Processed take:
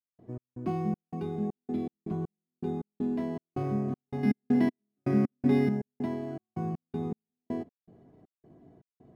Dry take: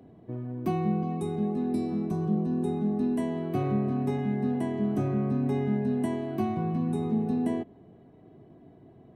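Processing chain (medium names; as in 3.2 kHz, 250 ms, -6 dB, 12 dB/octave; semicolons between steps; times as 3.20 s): trance gate ".x.xx.xx.x.x." 80 bpm -60 dB; 4.23–5.69 s: graphic EQ 250/500/2000/4000 Hz +9/+3/+11/+10 dB; decimation joined by straight lines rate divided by 6×; trim -3 dB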